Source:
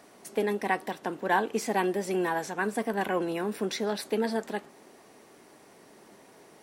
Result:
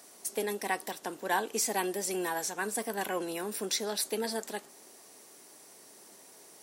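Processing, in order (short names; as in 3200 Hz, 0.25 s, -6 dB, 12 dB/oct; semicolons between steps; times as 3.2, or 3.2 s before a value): tone controls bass -6 dB, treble +15 dB; gain -4.5 dB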